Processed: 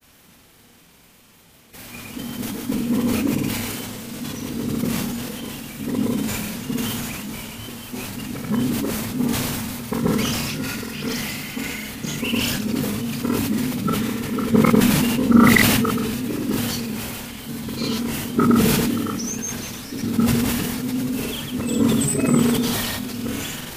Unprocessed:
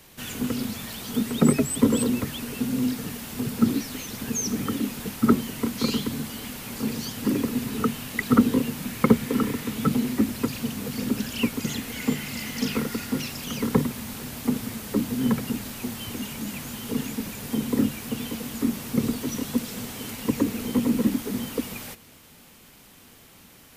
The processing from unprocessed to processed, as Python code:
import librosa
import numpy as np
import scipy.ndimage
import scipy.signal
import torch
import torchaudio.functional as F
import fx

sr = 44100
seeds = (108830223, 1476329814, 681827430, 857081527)

p1 = x[::-1].copy()
p2 = fx.granulator(p1, sr, seeds[0], grain_ms=100.0, per_s=20.0, spray_ms=100.0, spread_st=0)
p3 = p2 + fx.room_early_taps(p2, sr, ms=(29, 47), db=(-10.0, -8.0), dry=0)
y = fx.sustainer(p3, sr, db_per_s=20.0)